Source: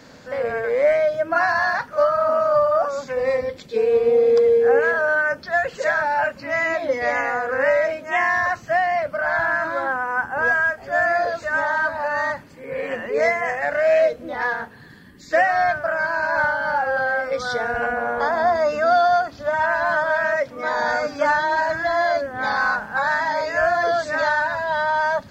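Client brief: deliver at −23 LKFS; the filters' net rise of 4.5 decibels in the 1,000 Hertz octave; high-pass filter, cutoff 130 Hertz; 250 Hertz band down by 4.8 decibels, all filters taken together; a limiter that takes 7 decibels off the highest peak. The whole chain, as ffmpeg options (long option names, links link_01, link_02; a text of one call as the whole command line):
ffmpeg -i in.wav -af "highpass=130,equalizer=frequency=250:width_type=o:gain=-6,equalizer=frequency=1000:width_type=o:gain=6.5,volume=-3.5dB,alimiter=limit=-14dB:level=0:latency=1" out.wav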